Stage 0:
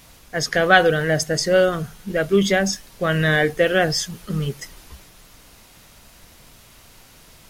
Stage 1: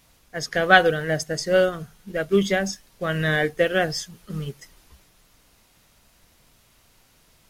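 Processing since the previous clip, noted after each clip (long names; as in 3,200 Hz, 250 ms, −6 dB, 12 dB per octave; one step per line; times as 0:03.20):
expander for the loud parts 1.5 to 1, over −30 dBFS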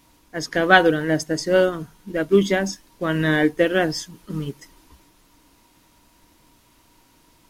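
hollow resonant body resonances 300/950 Hz, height 13 dB, ringing for 45 ms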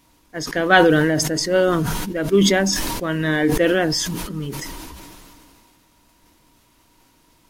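level that may fall only so fast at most 23 dB per second
level −1 dB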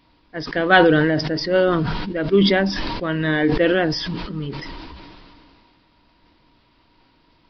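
downsampling to 11,025 Hz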